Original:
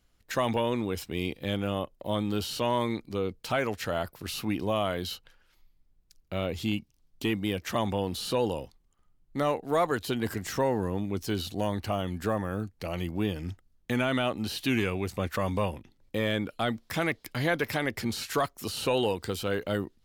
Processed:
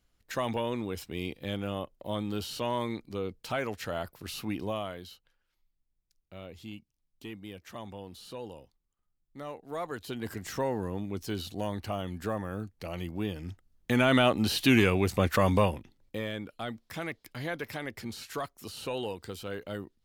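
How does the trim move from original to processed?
4.66 s -4 dB
5.14 s -14 dB
9.41 s -14 dB
10.48 s -4 dB
13.50 s -4 dB
14.14 s +5 dB
15.57 s +5 dB
16.32 s -8 dB

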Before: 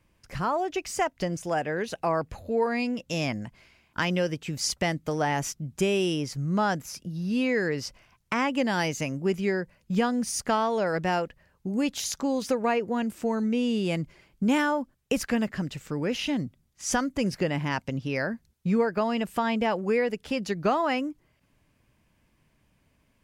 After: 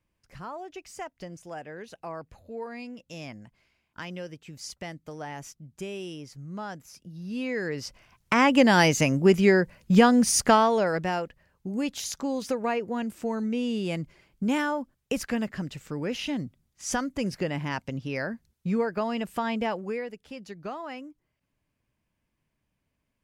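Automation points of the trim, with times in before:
6.75 s -11.5 dB
7.81 s -2.5 dB
8.53 s +7.5 dB
10.45 s +7.5 dB
11.13 s -2.5 dB
19.66 s -2.5 dB
20.20 s -12 dB

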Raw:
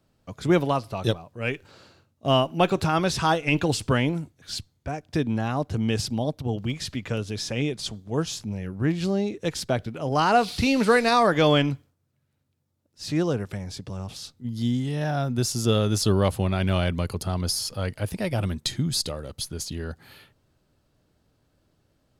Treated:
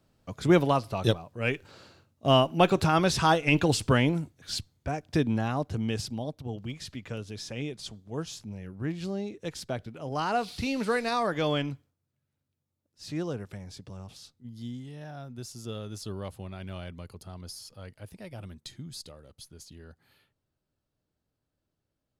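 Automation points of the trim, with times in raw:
5.19 s -0.5 dB
6.31 s -8.5 dB
13.92 s -8.5 dB
15.08 s -16 dB

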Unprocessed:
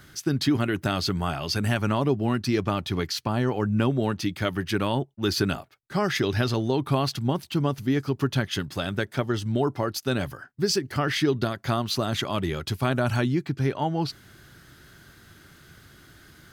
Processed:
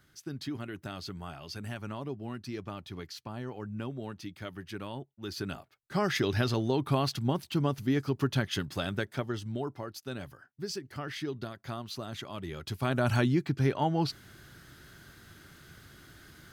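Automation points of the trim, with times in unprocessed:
5.27 s -14.5 dB
5.96 s -4 dB
8.85 s -4 dB
9.86 s -13 dB
12.37 s -13 dB
13.11 s -2 dB

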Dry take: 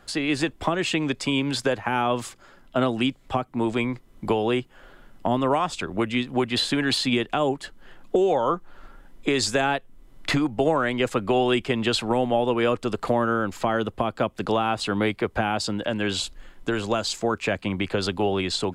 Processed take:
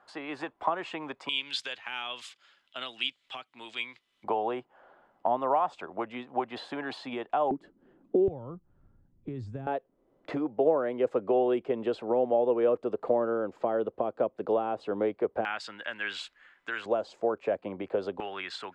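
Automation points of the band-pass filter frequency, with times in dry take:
band-pass filter, Q 2
920 Hz
from 1.29 s 3.2 kHz
from 4.24 s 780 Hz
from 7.51 s 290 Hz
from 8.28 s 100 Hz
from 9.67 s 500 Hz
from 15.45 s 1.8 kHz
from 16.86 s 550 Hz
from 18.20 s 1.6 kHz

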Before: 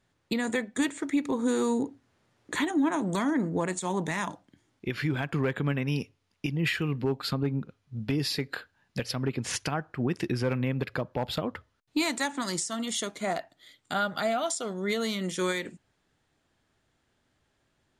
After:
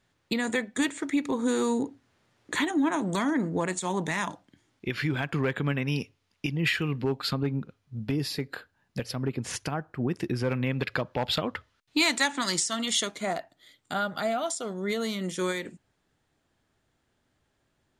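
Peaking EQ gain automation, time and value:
peaking EQ 3.2 kHz 2.8 oct
7.44 s +3 dB
8.24 s -4 dB
10.27 s -4 dB
10.82 s +7.5 dB
12.96 s +7.5 dB
13.38 s -2 dB

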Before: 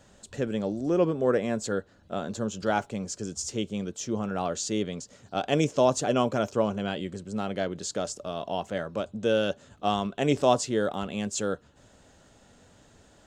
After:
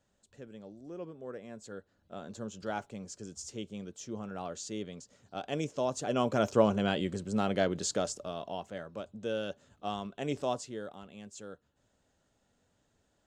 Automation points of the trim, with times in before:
1.34 s -19 dB
2.38 s -10 dB
5.92 s -10 dB
6.52 s +1 dB
7.84 s +1 dB
8.72 s -10 dB
10.40 s -10 dB
11.03 s -17 dB

